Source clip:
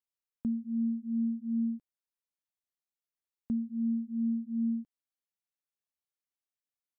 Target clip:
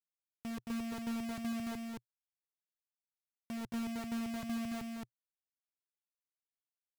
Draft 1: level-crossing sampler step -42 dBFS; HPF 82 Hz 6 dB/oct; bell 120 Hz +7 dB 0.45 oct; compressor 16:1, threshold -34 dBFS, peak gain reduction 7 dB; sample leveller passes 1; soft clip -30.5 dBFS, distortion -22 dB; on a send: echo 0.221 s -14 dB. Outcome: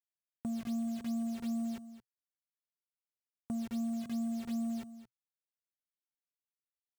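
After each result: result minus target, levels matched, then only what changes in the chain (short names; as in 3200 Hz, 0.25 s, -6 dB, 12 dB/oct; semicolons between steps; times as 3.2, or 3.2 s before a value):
level-crossing sampler: distortion -13 dB; echo-to-direct -11.5 dB; soft clip: distortion -10 dB
change: level-crossing sampler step -31.5 dBFS; change: echo 0.221 s -2.5 dB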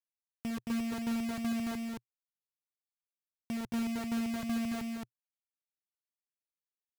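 soft clip: distortion -9 dB
change: soft clip -38.5 dBFS, distortion -12 dB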